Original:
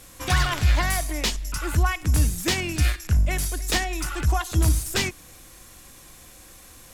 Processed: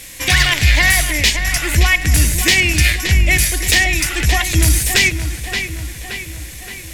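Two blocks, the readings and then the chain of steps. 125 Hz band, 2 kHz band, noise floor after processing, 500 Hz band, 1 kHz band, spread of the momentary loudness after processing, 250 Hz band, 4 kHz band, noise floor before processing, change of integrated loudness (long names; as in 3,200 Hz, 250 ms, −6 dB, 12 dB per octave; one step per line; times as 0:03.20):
+6.5 dB, +15.5 dB, −32 dBFS, +6.0 dB, +4.0 dB, 15 LU, +6.5 dB, +13.0 dB, −48 dBFS, +10.5 dB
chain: high shelf with overshoot 1,600 Hz +6.5 dB, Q 3
on a send: feedback echo with a low-pass in the loop 573 ms, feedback 59%, low-pass 4,000 Hz, level −9 dB
on the sum: boost into a limiter +7.5 dB
level −1 dB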